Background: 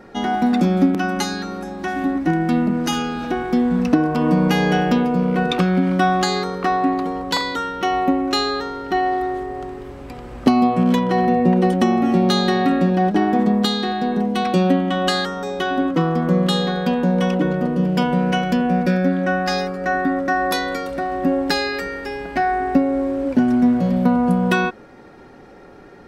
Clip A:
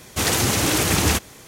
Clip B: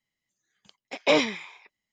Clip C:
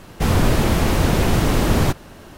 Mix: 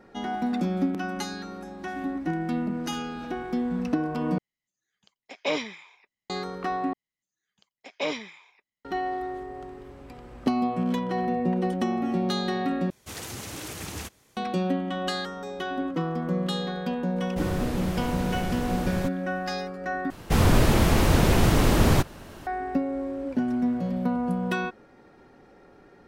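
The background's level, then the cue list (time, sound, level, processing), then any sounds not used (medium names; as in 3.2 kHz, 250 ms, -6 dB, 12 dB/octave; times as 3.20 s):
background -10 dB
4.38 s: replace with B -6.5 dB
6.93 s: replace with B -8.5 dB
12.90 s: replace with A -17.5 dB
17.16 s: add C -14 dB + warped record 78 rpm, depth 100 cents
20.10 s: replace with C -2.5 dB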